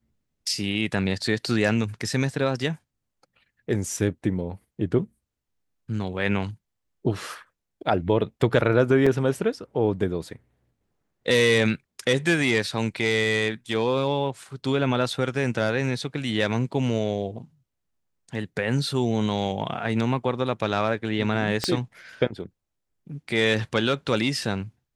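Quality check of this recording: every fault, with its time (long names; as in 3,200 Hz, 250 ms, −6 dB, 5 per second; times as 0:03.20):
0:09.06–0:09.07: drop-out 5.2 ms
0:21.64: click −9 dBFS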